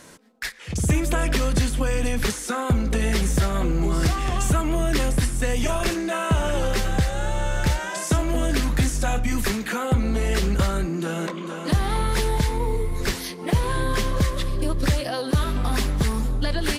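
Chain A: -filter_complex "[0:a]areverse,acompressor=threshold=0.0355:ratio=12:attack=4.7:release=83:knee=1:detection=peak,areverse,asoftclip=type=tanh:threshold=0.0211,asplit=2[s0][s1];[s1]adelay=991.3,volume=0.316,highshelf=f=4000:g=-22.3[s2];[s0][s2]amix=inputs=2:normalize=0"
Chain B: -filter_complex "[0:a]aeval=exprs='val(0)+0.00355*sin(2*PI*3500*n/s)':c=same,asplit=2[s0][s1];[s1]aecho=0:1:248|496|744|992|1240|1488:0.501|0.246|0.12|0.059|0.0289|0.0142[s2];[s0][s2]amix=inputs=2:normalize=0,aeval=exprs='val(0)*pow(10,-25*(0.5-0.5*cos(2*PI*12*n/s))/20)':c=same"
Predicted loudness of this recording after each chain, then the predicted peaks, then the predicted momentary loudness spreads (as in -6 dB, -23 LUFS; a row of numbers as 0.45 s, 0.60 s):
-38.5 LUFS, -29.0 LUFS; -31.0 dBFS, -9.5 dBFS; 3 LU, 4 LU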